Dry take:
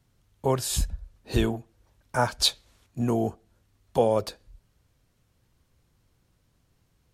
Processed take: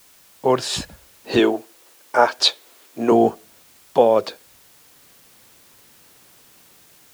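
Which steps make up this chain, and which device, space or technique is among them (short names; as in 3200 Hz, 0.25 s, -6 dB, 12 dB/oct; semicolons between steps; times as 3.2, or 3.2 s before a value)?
dictaphone (BPF 260–4300 Hz; AGC gain up to 16 dB; wow and flutter; white noise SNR 29 dB); 1.39–3.12 resonant low shelf 240 Hz -10 dB, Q 1.5; gain -1 dB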